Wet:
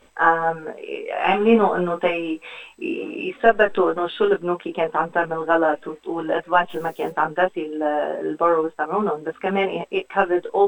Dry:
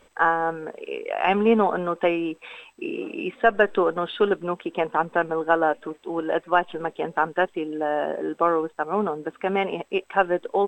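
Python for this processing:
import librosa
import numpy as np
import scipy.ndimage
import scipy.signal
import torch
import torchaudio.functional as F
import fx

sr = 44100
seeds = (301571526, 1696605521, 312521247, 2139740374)

y = fx.doubler(x, sr, ms=22.0, db=-5, at=(1.13, 2.93))
y = fx.dmg_noise_colour(y, sr, seeds[0], colour='blue', level_db=-54.0, at=(6.69, 7.09), fade=0.02)
y = fx.detune_double(y, sr, cents=11)
y = y * librosa.db_to_amplitude(6.0)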